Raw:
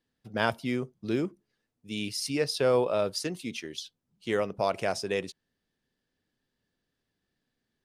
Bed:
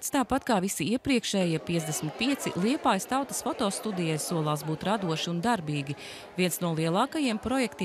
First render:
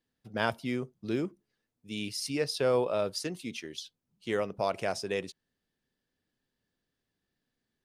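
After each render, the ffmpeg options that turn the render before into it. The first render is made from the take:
-af "volume=0.75"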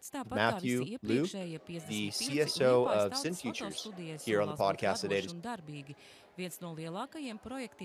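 -filter_complex "[1:a]volume=0.2[s0];[0:a][s0]amix=inputs=2:normalize=0"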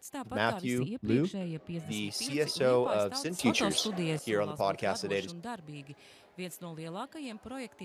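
-filter_complex "[0:a]asettb=1/sr,asplit=3[s0][s1][s2];[s0]atrim=end=0.784[s3];[s1]atrim=start=0.78:end=1.92,asetpts=PTS-STARTPTS,afade=t=in:d=0.004:c=qsin,afade=t=out:st=1.136:d=0.004:c=qsin,bass=f=250:g=7,treble=f=4000:g=-7[s4];[s2]atrim=start=1.916[s5];[s3][s4]acrossfade=d=0.004:c1=hsin:c2=qsin[s6];[s6][s5]acrossfade=d=0.004:c1=qsin:c2=hsin,asplit=3[s7][s8][s9];[s7]atrim=end=3.392[s10];[s8]atrim=start=3.388:end=4.192,asetpts=PTS-STARTPTS,volume=3.35[s11];[s9]atrim=start=4.188[s12];[s10][s11]acrossfade=d=0.004:c1=hsin:c2=hsin[s13];[s13][s12]acrossfade=d=0.004:c1=hsin:c2=hsin"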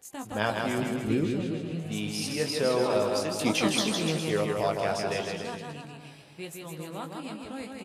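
-filter_complex "[0:a]asplit=2[s0][s1];[s1]adelay=19,volume=0.473[s2];[s0][s2]amix=inputs=2:normalize=0,aecho=1:1:160|296|411.6|509.9|593.4:0.631|0.398|0.251|0.158|0.1"

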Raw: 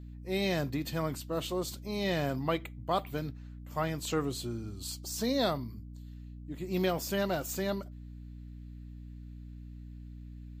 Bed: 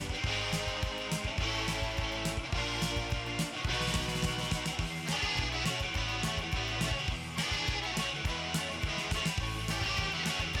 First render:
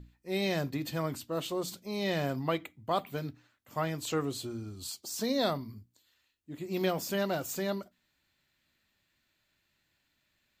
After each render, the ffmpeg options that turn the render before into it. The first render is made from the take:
-af "bandreject=f=60:t=h:w=6,bandreject=f=120:t=h:w=6,bandreject=f=180:t=h:w=6,bandreject=f=240:t=h:w=6,bandreject=f=300:t=h:w=6"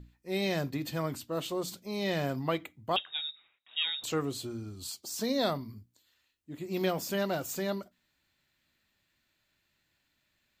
-filter_complex "[0:a]asettb=1/sr,asplit=3[s0][s1][s2];[s0]atrim=end=2.964[s3];[s1]atrim=start=2.96:end=4.04,asetpts=PTS-STARTPTS,afade=t=in:d=0.004:c=qsin,afade=t=out:st=1.076:d=0.004:c=qsin,lowpass=f=3300:t=q:w=0.5098,lowpass=f=3300:t=q:w=0.6013,lowpass=f=3300:t=q:w=0.9,lowpass=f=3300:t=q:w=2.563,afreqshift=-3900[s4];[s2]atrim=start=4.036[s5];[s3][s4]acrossfade=d=0.004:c1=hsin:c2=qsin[s6];[s6][s5]acrossfade=d=0.004:c1=qsin:c2=hsin"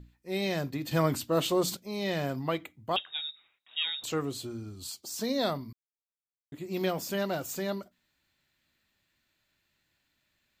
-filter_complex "[0:a]asettb=1/sr,asplit=3[s0][s1][s2];[s0]atrim=end=0.914[s3];[s1]atrim=start=0.91:end=1.77,asetpts=PTS-STARTPTS,afade=t=in:d=0.004:c=qsin,afade=t=out:st=0.856:d=0.004:c=qsin,acontrast=87[s4];[s2]atrim=start=1.766[s5];[s3][s4]acrossfade=d=0.004:c1=hsin:c2=qsin[s6];[s6][s5]acrossfade=d=0.004:c1=qsin:c2=hsin,asplit=3[s7][s8][s9];[s7]atrim=end=5.73,asetpts=PTS-STARTPTS,afade=t=out:st=5.726:d=0.004:c=hsin[s10];[s8]atrim=start=5.73:end=6.52,asetpts=PTS-STARTPTS,volume=0[s11];[s9]atrim=start=6.52,asetpts=PTS-STARTPTS,afade=t=in:d=0.004:c=hsin[s12];[s10][s11][s12]concat=n=3:v=0:a=1"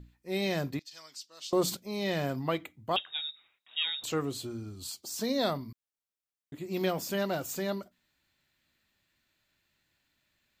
-filter_complex "[0:a]asettb=1/sr,asplit=3[s0][s1][s2];[s0]atrim=end=0.794[s3];[s1]atrim=start=0.79:end=1.53,asetpts=PTS-STARTPTS,afade=t=in:d=0.004:c=qsin,afade=t=out:st=0.736:d=0.004:c=qsin,bandpass=f=5300:t=q:w=3.4[s4];[s2]atrim=start=1.526[s5];[s3][s4]acrossfade=d=0.004:c1=hsin:c2=qsin[s6];[s6][s5]acrossfade=d=0.004:c1=qsin:c2=hsin"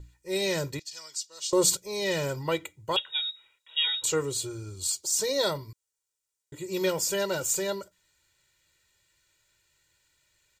-af "equalizer=f=7400:t=o:w=0.92:g=12,aecho=1:1:2.1:0.97"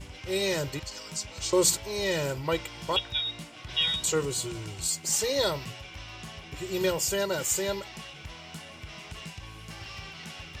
-filter_complex "[1:a]volume=0.355[s0];[0:a][s0]amix=inputs=2:normalize=0"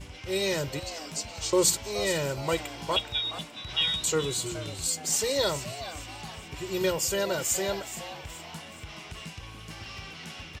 -filter_complex "[0:a]asplit=5[s0][s1][s2][s3][s4];[s1]adelay=422,afreqshift=150,volume=0.224[s5];[s2]adelay=844,afreqshift=300,volume=0.0966[s6];[s3]adelay=1266,afreqshift=450,volume=0.0412[s7];[s4]adelay=1688,afreqshift=600,volume=0.0178[s8];[s0][s5][s6][s7][s8]amix=inputs=5:normalize=0"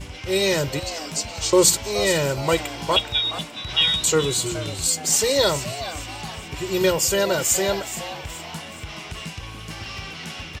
-af "volume=2.37,alimiter=limit=0.708:level=0:latency=1"

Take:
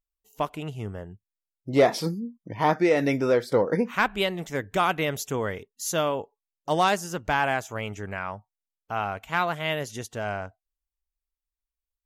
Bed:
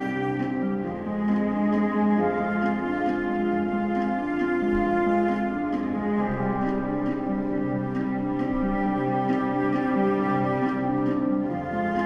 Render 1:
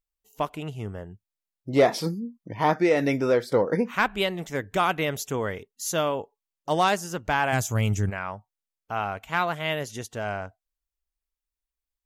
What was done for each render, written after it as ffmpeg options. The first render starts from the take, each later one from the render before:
-filter_complex "[0:a]asplit=3[s0][s1][s2];[s0]afade=t=out:st=7.52:d=0.02[s3];[s1]bass=f=250:g=15,treble=f=4000:g=13,afade=t=in:st=7.52:d=0.02,afade=t=out:st=8.09:d=0.02[s4];[s2]afade=t=in:st=8.09:d=0.02[s5];[s3][s4][s5]amix=inputs=3:normalize=0"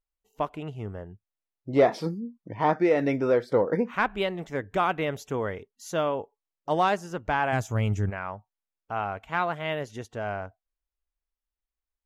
-af "lowpass=f=1700:p=1,equalizer=f=160:t=o:w=1.5:g=-2.5"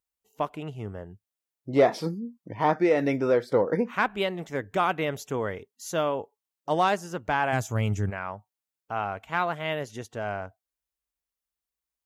-af "highpass=72,highshelf=f=5800:g=6.5"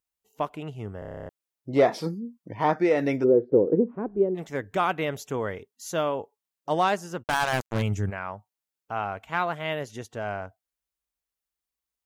-filter_complex "[0:a]asplit=3[s0][s1][s2];[s0]afade=t=out:st=3.23:d=0.02[s3];[s1]lowpass=f=380:t=q:w=2.8,afade=t=in:st=3.23:d=0.02,afade=t=out:st=4.34:d=0.02[s4];[s2]afade=t=in:st=4.34:d=0.02[s5];[s3][s4][s5]amix=inputs=3:normalize=0,asplit=3[s6][s7][s8];[s6]afade=t=out:st=7.22:d=0.02[s9];[s7]acrusher=bits=3:mix=0:aa=0.5,afade=t=in:st=7.22:d=0.02,afade=t=out:st=7.81:d=0.02[s10];[s8]afade=t=in:st=7.81:d=0.02[s11];[s9][s10][s11]amix=inputs=3:normalize=0,asplit=11[s12][s13][s14][s15][s16][s17][s18][s19][s20][s21][s22];[s12]atrim=end=1.022[s23];[s13]atrim=start=0.988:end=1.022[s24];[s14]atrim=start=0.988:end=1.022[s25];[s15]atrim=start=0.988:end=1.022[s26];[s16]atrim=start=0.988:end=1.022[s27];[s17]atrim=start=0.988:end=1.022[s28];[s18]atrim=start=0.988:end=1.022[s29];[s19]atrim=start=0.988:end=1.022[s30];[s20]atrim=start=0.988:end=1.022[s31];[s21]atrim=start=0.988:end=1.022[s32];[s22]atrim=start=1.288[s33];[s23][s24]acrossfade=d=0.004:c1=hsin:c2=hsin[s34];[s34][s25]acrossfade=d=0.004:c1=hsin:c2=hsin[s35];[s35][s26]acrossfade=d=0.004:c1=hsin:c2=hsin[s36];[s36][s27]acrossfade=d=0.004:c1=hsin:c2=hsin[s37];[s37][s28]acrossfade=d=0.004:c1=hsin:c2=hsin[s38];[s38][s29]acrossfade=d=0.004:c1=hsin:c2=hsin[s39];[s39][s30]acrossfade=d=0.004:c1=hsin:c2=hsin[s40];[s40][s31]acrossfade=d=0.004:c1=hsin:c2=hsin[s41];[s41][s32]acrossfade=d=0.004:c1=hsin:c2=hsin[s42];[s42][s33]acrossfade=d=0.004:c1=hsin:c2=hsin"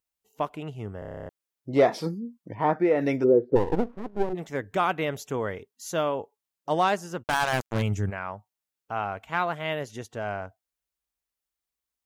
-filter_complex "[0:a]asplit=3[s0][s1][s2];[s0]afade=t=out:st=2.54:d=0.02[s3];[s1]equalizer=f=5900:w=0.69:g=-13.5,afade=t=in:st=2.54:d=0.02,afade=t=out:st=3:d=0.02[s4];[s2]afade=t=in:st=3:d=0.02[s5];[s3][s4][s5]amix=inputs=3:normalize=0,asplit=3[s6][s7][s8];[s6]afade=t=out:st=3.55:d=0.02[s9];[s7]aeval=exprs='max(val(0),0)':c=same,afade=t=in:st=3.55:d=0.02,afade=t=out:st=4.32:d=0.02[s10];[s8]afade=t=in:st=4.32:d=0.02[s11];[s9][s10][s11]amix=inputs=3:normalize=0"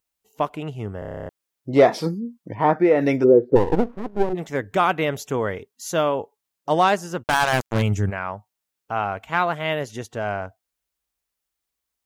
-af "volume=1.88"

